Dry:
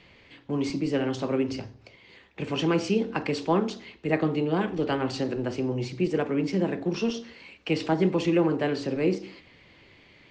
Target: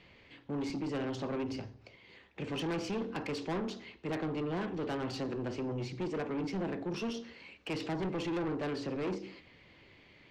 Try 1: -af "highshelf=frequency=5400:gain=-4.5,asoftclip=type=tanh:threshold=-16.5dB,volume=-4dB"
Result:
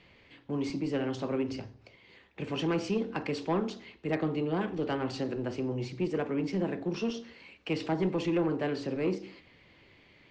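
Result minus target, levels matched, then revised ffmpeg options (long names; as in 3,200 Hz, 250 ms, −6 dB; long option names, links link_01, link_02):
soft clipping: distortion −11 dB
-af "highshelf=frequency=5400:gain=-4.5,asoftclip=type=tanh:threshold=-27.5dB,volume=-4dB"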